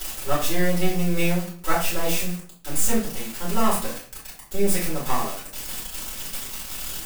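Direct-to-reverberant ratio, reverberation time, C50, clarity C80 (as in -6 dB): -9.5 dB, 0.45 s, 5.5 dB, 10.5 dB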